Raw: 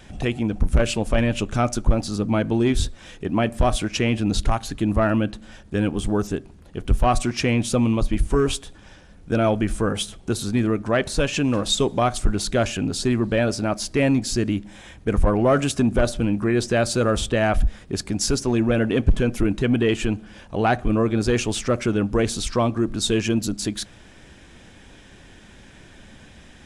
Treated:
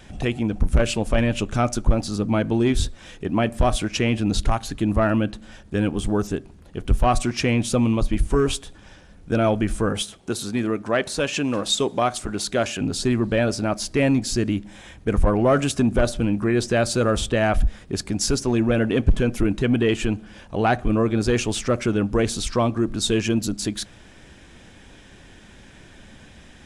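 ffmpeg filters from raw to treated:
-filter_complex "[0:a]asettb=1/sr,asplit=3[s0][s1][s2];[s0]atrim=end=10.024[s3];[s1]atrim=start=10.02:end=12.81,asetpts=PTS-STARTPTS,afade=t=in:d=0.004:c=qsin,afade=t=out:st=2.786:d=0.004:c=qsin,highpass=f=230:p=1[s4];[s2]atrim=start=12.806[s5];[s3][s4]acrossfade=d=0.004:c1=hsin:c2=qsin[s6];[s6][s5]acrossfade=d=0.004:c1=qsin:c2=hsin"

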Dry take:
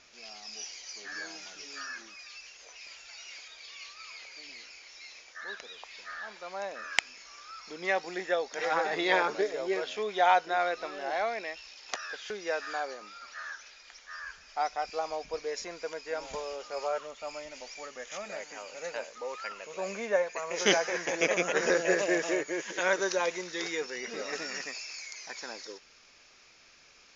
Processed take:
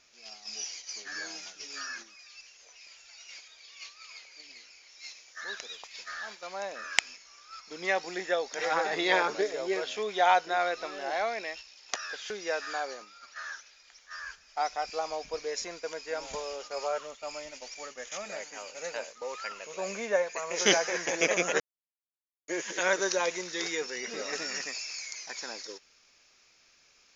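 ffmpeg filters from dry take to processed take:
-filter_complex "[0:a]asettb=1/sr,asplit=3[s0][s1][s2];[s0]atrim=end=4.994[s3];[s1]atrim=start=4.99:end=6.47,asetpts=PTS-STARTPTS,afade=t=in:d=0.004:c=qsin,afade=t=out:st=1.476:d=0.004:c=qsin,highshelf=f=4100:g=6[s4];[s2]atrim=start=6.466[s5];[s3][s4]acrossfade=d=0.004:c1=hsin:c2=qsin[s6];[s6][s5]acrossfade=d=0.004:c1=qsin:c2=hsin,asplit=3[s7][s8][s9];[s7]atrim=end=21.6,asetpts=PTS-STARTPTS,afade=t=out:st=21.596:d=0.004:c=hsin[s10];[s8]atrim=start=21.6:end=22.48,asetpts=PTS-STARTPTS,volume=0[s11];[s9]atrim=start=22.48,asetpts=PTS-STARTPTS,afade=t=in:d=0.004:c=hsin[s12];[s10][s11][s12]concat=n=3:v=0:a=1,agate=range=0.447:threshold=0.00562:ratio=16:detection=peak,highshelf=f=5800:g=8.5"

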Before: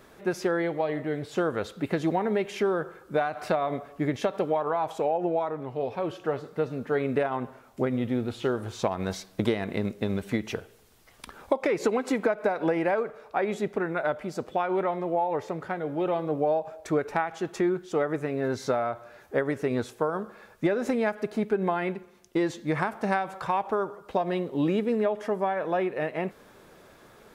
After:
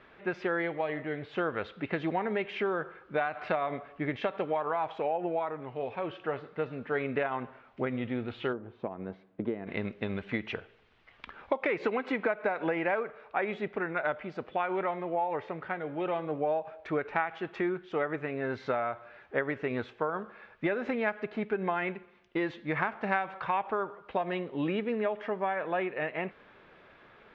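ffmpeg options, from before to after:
-filter_complex "[0:a]asplit=3[s0][s1][s2];[s0]afade=t=out:st=8.52:d=0.02[s3];[s1]bandpass=f=280:t=q:w=0.93,afade=t=in:st=8.52:d=0.02,afade=t=out:st=9.66:d=0.02[s4];[s2]afade=t=in:st=9.66:d=0.02[s5];[s3][s4][s5]amix=inputs=3:normalize=0,lowpass=f=2800:w=0.5412,lowpass=f=2800:w=1.3066,tiltshelf=f=1500:g=-6.5"

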